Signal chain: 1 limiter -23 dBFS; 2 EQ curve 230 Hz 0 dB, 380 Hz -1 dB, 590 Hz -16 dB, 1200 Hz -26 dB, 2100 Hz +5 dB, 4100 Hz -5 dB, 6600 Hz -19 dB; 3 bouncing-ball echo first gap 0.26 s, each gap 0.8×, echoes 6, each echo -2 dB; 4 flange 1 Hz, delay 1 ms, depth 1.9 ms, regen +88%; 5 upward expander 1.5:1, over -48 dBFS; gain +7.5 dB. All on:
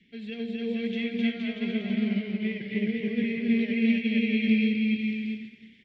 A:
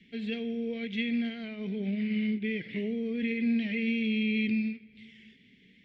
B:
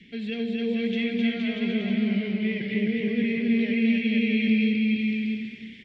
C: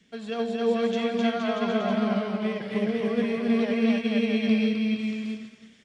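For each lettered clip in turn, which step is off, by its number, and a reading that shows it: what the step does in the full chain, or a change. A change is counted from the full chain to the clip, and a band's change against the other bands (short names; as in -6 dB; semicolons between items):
3, loudness change -3.5 LU; 5, crest factor change -2.5 dB; 2, 500 Hz band +8.5 dB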